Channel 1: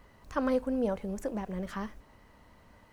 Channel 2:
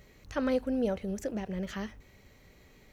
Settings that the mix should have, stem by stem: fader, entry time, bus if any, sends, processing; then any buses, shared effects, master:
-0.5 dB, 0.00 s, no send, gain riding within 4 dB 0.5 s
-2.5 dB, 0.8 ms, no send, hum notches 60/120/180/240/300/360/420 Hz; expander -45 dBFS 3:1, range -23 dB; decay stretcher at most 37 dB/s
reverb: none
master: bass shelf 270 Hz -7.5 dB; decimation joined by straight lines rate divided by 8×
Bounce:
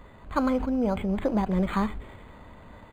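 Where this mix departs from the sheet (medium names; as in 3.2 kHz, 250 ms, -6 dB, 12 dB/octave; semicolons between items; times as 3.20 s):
stem 1 -0.5 dB -> +7.5 dB; master: missing bass shelf 270 Hz -7.5 dB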